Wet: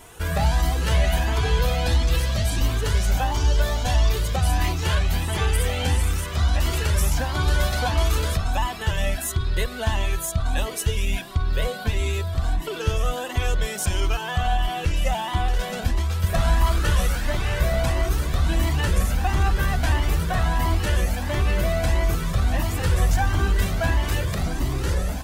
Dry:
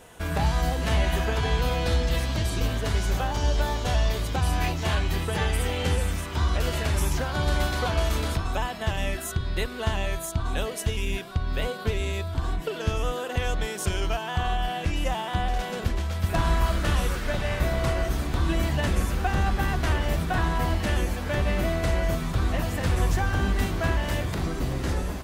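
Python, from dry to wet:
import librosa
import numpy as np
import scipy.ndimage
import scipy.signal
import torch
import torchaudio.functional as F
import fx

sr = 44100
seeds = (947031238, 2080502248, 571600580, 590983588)

p1 = fx.high_shelf(x, sr, hz=6000.0, db=5.5)
p2 = 10.0 ** (-29.0 / 20.0) * np.tanh(p1 / 10.0 ** (-29.0 / 20.0))
p3 = p1 + (p2 * librosa.db_to_amplitude(-7.5))
p4 = fx.comb_cascade(p3, sr, direction='rising', hz=1.5)
y = p4 * librosa.db_to_amplitude(4.5)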